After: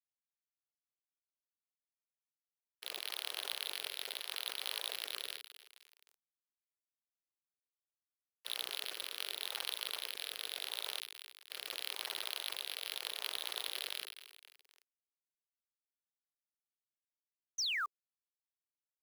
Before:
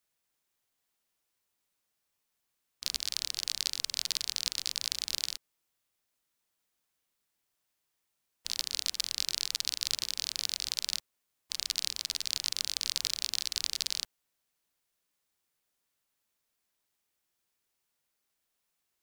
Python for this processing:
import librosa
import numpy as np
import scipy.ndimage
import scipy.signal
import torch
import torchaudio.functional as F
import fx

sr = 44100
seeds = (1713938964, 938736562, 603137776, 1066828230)

p1 = fx.rotary(x, sr, hz=0.8)
p2 = np.repeat(scipy.signal.resample_poly(p1, 1, 6), 6)[:len(p1)]
p3 = fx.echo_feedback(p2, sr, ms=262, feedback_pct=42, wet_db=-18)
p4 = fx.spec_paint(p3, sr, seeds[0], shape='fall', start_s=17.58, length_s=0.28, low_hz=1100.0, high_hz=6500.0, level_db=-44.0)
p5 = fx.high_shelf(p4, sr, hz=4600.0, db=4.0)
p6 = fx.rider(p5, sr, range_db=10, speed_s=2.0)
p7 = p5 + F.gain(torch.from_numpy(p6), -1.5).numpy()
p8 = fx.quant_dither(p7, sr, seeds[1], bits=10, dither='none')
p9 = 10.0 ** (-29.0 / 20.0) * np.tanh(p8 / 10.0 ** (-29.0 / 20.0))
p10 = scipy.signal.sosfilt(scipy.signal.cheby1(4, 1.0, 410.0, 'highpass', fs=sr, output='sos'), p9)
p11 = fx.sustainer(p10, sr, db_per_s=94.0)
y = F.gain(torch.from_numpy(p11), 3.0).numpy()